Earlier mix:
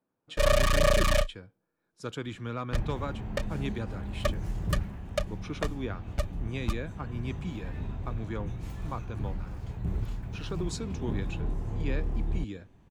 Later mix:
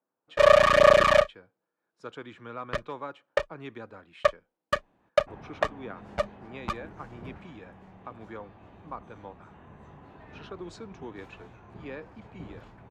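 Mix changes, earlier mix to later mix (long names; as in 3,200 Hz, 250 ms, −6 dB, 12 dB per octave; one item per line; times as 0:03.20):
first sound +10.0 dB
second sound: entry +2.55 s
master: add resonant band-pass 930 Hz, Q 0.64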